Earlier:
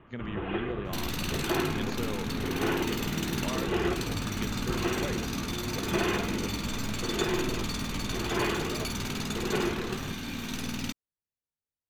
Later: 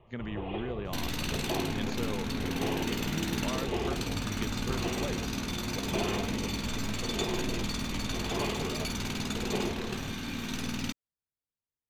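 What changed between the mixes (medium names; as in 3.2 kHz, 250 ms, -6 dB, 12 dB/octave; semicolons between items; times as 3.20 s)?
first sound: add static phaser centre 620 Hz, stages 4; second sound: add treble shelf 12 kHz -6.5 dB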